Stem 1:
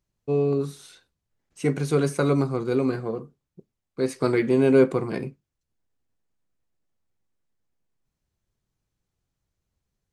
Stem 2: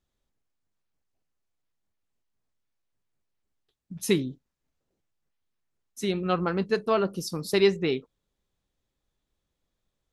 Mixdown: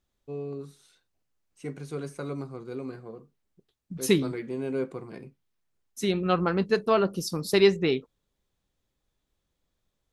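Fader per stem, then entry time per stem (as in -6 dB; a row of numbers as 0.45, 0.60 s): -13.0, +1.5 dB; 0.00, 0.00 s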